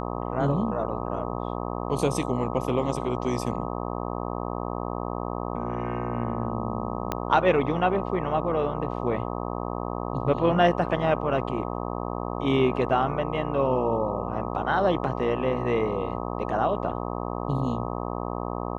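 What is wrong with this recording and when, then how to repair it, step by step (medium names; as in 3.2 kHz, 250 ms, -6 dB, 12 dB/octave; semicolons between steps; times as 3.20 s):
buzz 60 Hz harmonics 21 -31 dBFS
7.12 s: pop -12 dBFS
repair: de-click; de-hum 60 Hz, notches 21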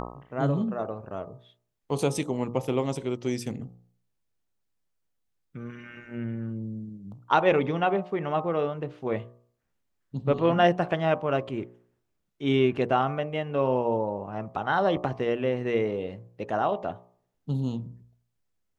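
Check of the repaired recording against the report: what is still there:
7.12 s: pop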